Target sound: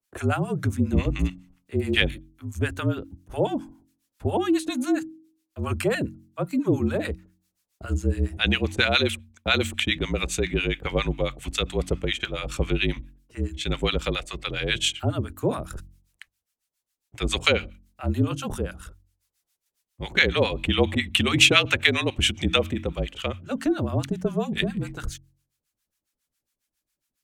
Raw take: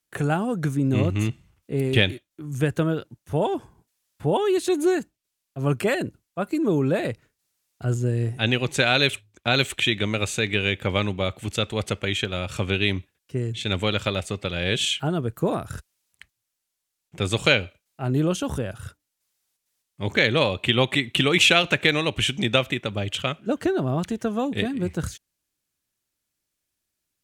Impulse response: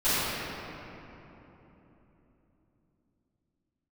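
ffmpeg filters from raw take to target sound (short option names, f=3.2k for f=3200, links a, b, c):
-filter_complex "[0:a]acrossover=split=870[a][b];[a]aeval=exprs='val(0)*(1-1/2+1/2*cos(2*PI*7.3*n/s))':c=same[c];[b]aeval=exprs='val(0)*(1-1/2-1/2*cos(2*PI*7.3*n/s))':c=same[d];[c][d]amix=inputs=2:normalize=0,afreqshift=-43,bandreject=f=45.61:t=h:w=4,bandreject=f=91.22:t=h:w=4,bandreject=f=136.83:t=h:w=4,bandreject=f=182.44:t=h:w=4,bandreject=f=228.05:t=h:w=4,bandreject=f=273.66:t=h:w=4,bandreject=f=319.27:t=h:w=4,volume=3.5dB"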